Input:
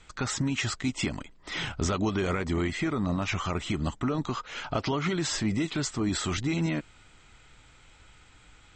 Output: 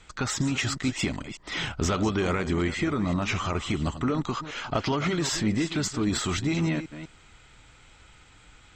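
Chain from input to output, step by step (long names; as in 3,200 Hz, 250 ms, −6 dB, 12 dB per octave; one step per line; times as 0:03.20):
delay that plays each chunk backwards 196 ms, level −12 dB
harmonic generator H 2 −18 dB, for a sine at −17 dBFS
level +2 dB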